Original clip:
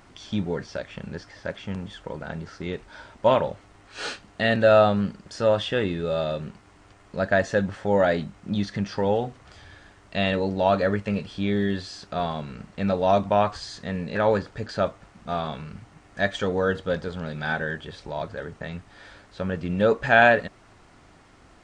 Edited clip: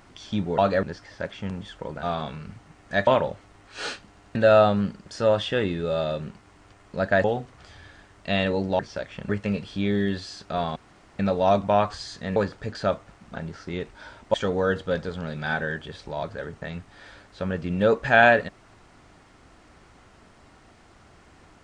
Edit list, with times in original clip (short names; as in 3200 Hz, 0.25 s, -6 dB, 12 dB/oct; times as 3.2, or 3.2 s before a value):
0.58–1.08 swap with 10.66–10.91
2.28–3.27 swap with 15.29–16.33
4.28 stutter in place 0.09 s, 3 plays
7.44–9.11 cut
12.38–12.81 room tone
13.98–14.3 cut